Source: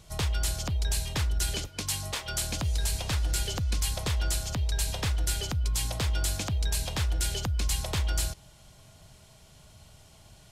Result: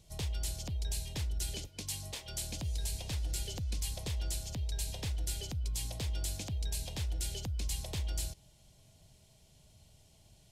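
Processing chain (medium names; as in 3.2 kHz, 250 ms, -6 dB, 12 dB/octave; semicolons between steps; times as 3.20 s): peaking EQ 1.3 kHz -12 dB 0.97 oct; trim -7.5 dB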